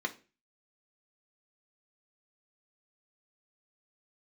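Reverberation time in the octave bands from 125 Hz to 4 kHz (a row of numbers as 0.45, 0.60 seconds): 0.45, 0.40, 0.40, 0.30, 0.35, 0.30 seconds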